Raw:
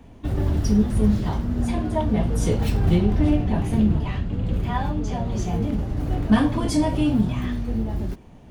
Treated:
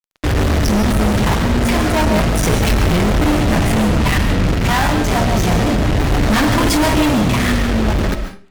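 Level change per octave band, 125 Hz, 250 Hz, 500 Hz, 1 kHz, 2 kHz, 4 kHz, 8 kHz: +6.0, +5.5, +10.0, +12.5, +17.5, +16.0, +14.0 dB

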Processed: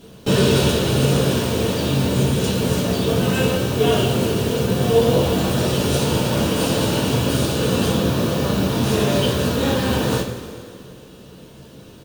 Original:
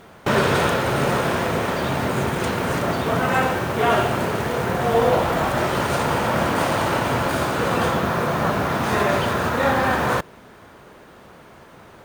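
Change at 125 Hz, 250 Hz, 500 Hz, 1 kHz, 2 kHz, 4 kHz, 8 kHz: +6.0, +5.5, +2.0, -7.0, -5.0, +6.5, +6.5 dB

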